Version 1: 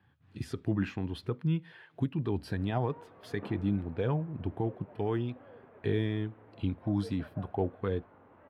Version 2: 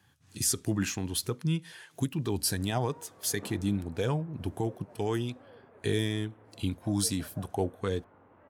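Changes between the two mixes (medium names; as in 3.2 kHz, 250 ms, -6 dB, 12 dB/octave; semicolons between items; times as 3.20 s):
speech: remove distance through air 430 m; reverb: off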